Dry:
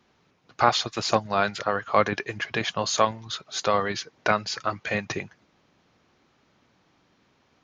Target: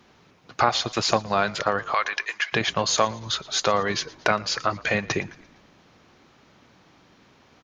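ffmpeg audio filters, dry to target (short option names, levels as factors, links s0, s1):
-filter_complex "[0:a]asettb=1/sr,asplit=3[s0][s1][s2];[s0]atrim=end=1.944[s3];[s1]atrim=start=1.94:end=2.53,asetpts=PTS-STARTPTS,afade=t=in:d=0.004:c=qsin,afade=t=out:st=0.586:d=0.004:c=qsin,highpass=1300[s4];[s2]atrim=start=2.526[s5];[s3][s4]acrossfade=d=0.004:c1=hsin:c2=qsin[s6];[s6][s5]acrossfade=d=0.004:c1=qsin:c2=hsin,acompressor=threshold=0.0251:ratio=2,asplit=5[s7][s8][s9][s10][s11];[s8]adelay=115,afreqshift=-46,volume=0.0841[s12];[s9]adelay=230,afreqshift=-92,volume=0.0437[s13];[s10]adelay=345,afreqshift=-138,volume=0.0226[s14];[s11]adelay=460,afreqshift=-184,volume=0.0119[s15];[s7][s12][s13][s14][s15]amix=inputs=5:normalize=0,volume=2.66"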